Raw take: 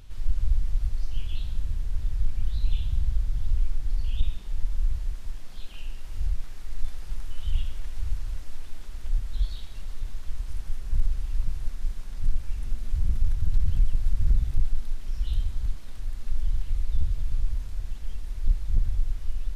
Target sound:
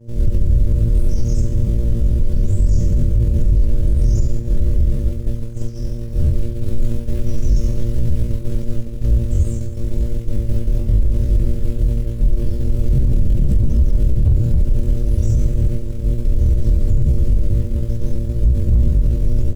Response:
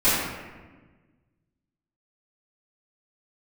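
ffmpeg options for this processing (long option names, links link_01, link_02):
-filter_complex "[0:a]aeval=exprs='val(0)+0.0224*(sin(2*PI*60*n/s)+sin(2*PI*2*60*n/s)/2+sin(2*PI*3*60*n/s)/3+sin(2*PI*4*60*n/s)/4+sin(2*PI*5*60*n/s)/5)':channel_layout=same,lowshelf=frequency=130:gain=2.5,asplit=2[link_01][link_02];[link_02]adelay=227.4,volume=-19dB,highshelf=frequency=4000:gain=-5.12[link_03];[link_01][link_03]amix=inputs=2:normalize=0,asetrate=85689,aresample=44100,atempo=0.514651,agate=range=-33dB:threshold=-21dB:ratio=3:detection=peak,asplit=2[link_04][link_05];[1:a]atrim=start_sample=2205,adelay=39[link_06];[link_05][link_06]afir=irnorm=-1:irlink=0,volume=-31.5dB[link_07];[link_04][link_07]amix=inputs=2:normalize=0,alimiter=level_in=15.5dB:limit=-1dB:release=50:level=0:latency=1,volume=-6dB"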